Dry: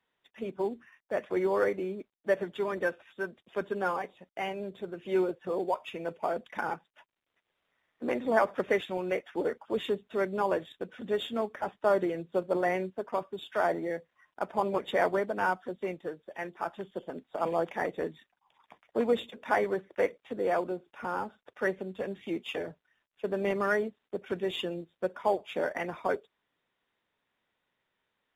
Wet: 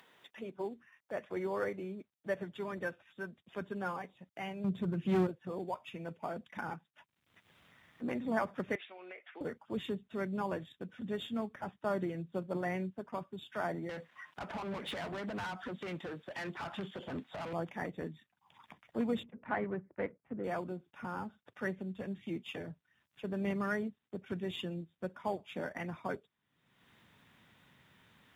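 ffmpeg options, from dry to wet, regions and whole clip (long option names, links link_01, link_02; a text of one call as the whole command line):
ffmpeg -i in.wav -filter_complex "[0:a]asettb=1/sr,asplit=3[link_01][link_02][link_03];[link_01]atrim=end=4.644[link_04];[link_02]atrim=start=4.64:end=5.27,asetpts=PTS-STARTPTS,afade=type=in:duration=0.004:curve=qsin,afade=type=out:start_time=0.626:duration=0.004:curve=qsin,equalizer=frequency=160:width_type=o:width=1.3:gain=8,acontrast=43,aeval=exprs='clip(val(0),-1,0.0531)':channel_layout=same[link_05];[link_03]atrim=start=5.266[link_06];[link_04][link_05]acrossfade=duration=0.004:curve1=hsin:curve2=qsin[link_07];[link_07][link_06]acrossfade=duration=0.004:curve1=qsin:curve2=hsin,asettb=1/sr,asplit=3[link_08][link_09][link_10];[link_08]atrim=end=8.754[link_11];[link_09]atrim=start=8.75:end=9.41,asetpts=PTS-STARTPTS,afade=type=in:duration=0.004:curve=qsin,afade=type=out:start_time=0.656:duration=0.004:curve=qsin,highpass=frequency=460:width=0.5412,highpass=frequency=460:width=1.3066,equalizer=frequency=520:width_type=q:width=4:gain=-5,equalizer=frequency=890:width_type=q:width=4:gain=-5,equalizer=frequency=2200:width_type=q:width=4:gain=5,lowpass=frequency=3400:width=0.5412,lowpass=frequency=3400:width=1.3066,acompressor=threshold=-37dB:ratio=5:attack=3.2:release=140:knee=1:detection=peak[link_12];[link_10]atrim=start=9.406[link_13];[link_11][link_12]acrossfade=duration=0.004:curve1=hsin:curve2=qsin[link_14];[link_14][link_13]acrossfade=duration=0.004:curve1=qsin:curve2=hsin,asettb=1/sr,asplit=3[link_15][link_16][link_17];[link_15]atrim=end=13.894[link_18];[link_16]atrim=start=13.89:end=17.53,asetpts=PTS-STARTPTS,afade=type=in:duration=0.004:curve=qsin,afade=type=out:start_time=3.636:duration=0.004:curve=qsin,acompressor=threshold=-37dB:ratio=4:attack=3.2:release=140:knee=1:detection=peak,asplit=2[link_19][link_20];[link_20]highpass=frequency=720:poles=1,volume=26dB,asoftclip=type=tanh:threshold=-25dB[link_21];[link_19][link_21]amix=inputs=2:normalize=0,lowpass=frequency=4200:poles=1,volume=-6dB[link_22];[link_17]atrim=start=17.526[link_23];[link_18][link_22]acrossfade=duration=0.004:curve1=hsin:curve2=qsin[link_24];[link_24][link_23]acrossfade=duration=0.004:curve1=qsin:curve2=hsin,asettb=1/sr,asplit=3[link_25][link_26][link_27];[link_25]atrim=end=19.234[link_28];[link_26]atrim=start=19.23:end=20.44,asetpts=PTS-STARTPTS,afade=type=in:duration=0.004:curve=qsin,afade=type=out:start_time=1.206:duration=0.004:curve=qsin,adynamicsmooth=sensitivity=7:basefreq=1100,lowpass=frequency=2500:width=0.5412,lowpass=frequency=2500:width=1.3066[link_29];[link_27]atrim=start=20.436[link_30];[link_28][link_29]acrossfade=duration=0.004:curve1=hsin:curve2=qsin[link_31];[link_31][link_30]acrossfade=duration=0.004:curve1=qsin:curve2=hsin,highpass=120,asubboost=boost=7.5:cutoff=160,acompressor=mode=upward:threshold=-39dB:ratio=2.5,volume=-6.5dB" out.wav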